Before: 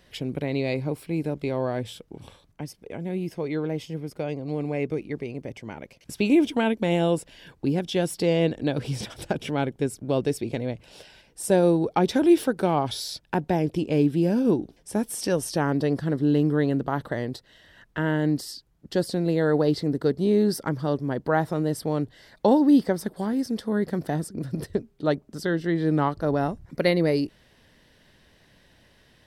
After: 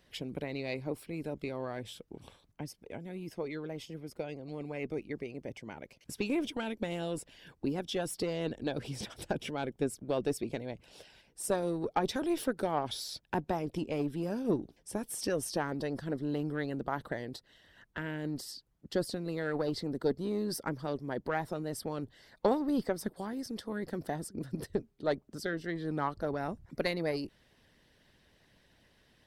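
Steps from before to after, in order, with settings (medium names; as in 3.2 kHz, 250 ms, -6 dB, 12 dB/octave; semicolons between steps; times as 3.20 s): single-diode clipper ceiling -15 dBFS; harmonic-percussive split harmonic -8 dB; trim -4.5 dB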